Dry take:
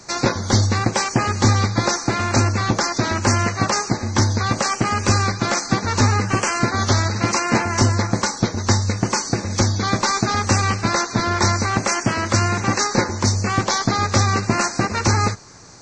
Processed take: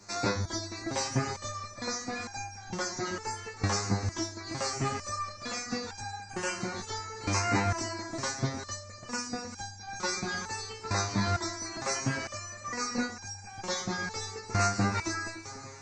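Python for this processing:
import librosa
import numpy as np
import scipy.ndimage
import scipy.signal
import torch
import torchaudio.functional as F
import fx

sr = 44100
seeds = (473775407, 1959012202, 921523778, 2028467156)

y = fx.echo_split(x, sr, split_hz=740.0, low_ms=287, high_ms=391, feedback_pct=52, wet_db=-12.5)
y = fx.resonator_held(y, sr, hz=2.2, low_hz=100.0, high_hz=800.0)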